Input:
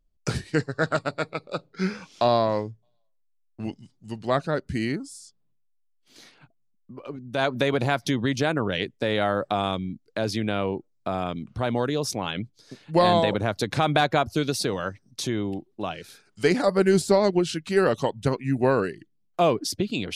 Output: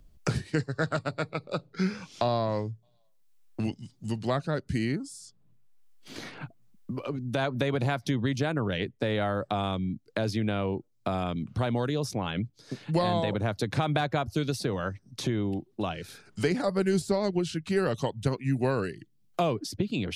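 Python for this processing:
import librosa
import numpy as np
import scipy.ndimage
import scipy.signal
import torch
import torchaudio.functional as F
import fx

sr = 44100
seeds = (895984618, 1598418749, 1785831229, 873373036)

y = fx.peak_eq(x, sr, hz=100.0, db=7.0, octaves=1.9)
y = fx.band_squash(y, sr, depth_pct=70)
y = y * librosa.db_to_amplitude(-6.0)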